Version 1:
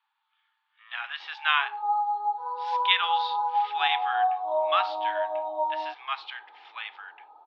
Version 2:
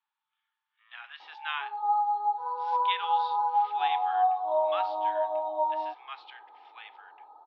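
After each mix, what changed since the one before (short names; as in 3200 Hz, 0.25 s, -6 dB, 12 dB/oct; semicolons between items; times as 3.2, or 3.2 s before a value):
speech -10.5 dB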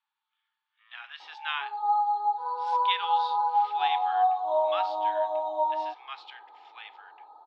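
background: remove air absorption 120 m; master: remove air absorption 160 m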